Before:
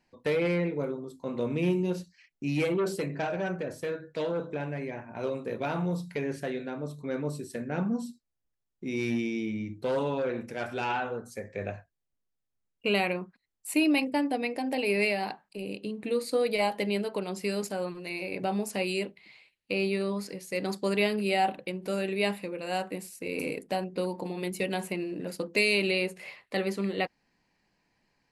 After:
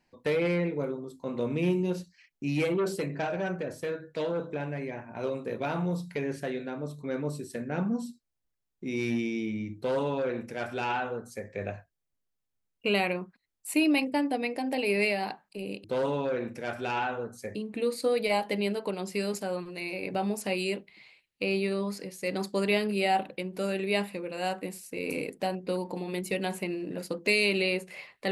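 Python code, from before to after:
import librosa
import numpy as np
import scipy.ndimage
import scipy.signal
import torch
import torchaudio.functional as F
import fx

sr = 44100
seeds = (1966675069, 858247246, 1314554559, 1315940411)

y = fx.edit(x, sr, fx.duplicate(start_s=9.77, length_s=1.71, to_s=15.84), tone=tone)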